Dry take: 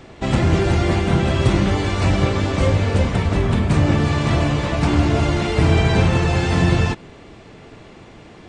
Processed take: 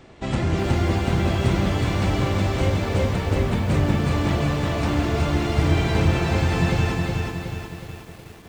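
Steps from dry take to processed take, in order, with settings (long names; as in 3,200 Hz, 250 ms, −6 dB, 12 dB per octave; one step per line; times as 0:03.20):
feedback echo at a low word length 367 ms, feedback 55%, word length 7 bits, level −3 dB
level −6 dB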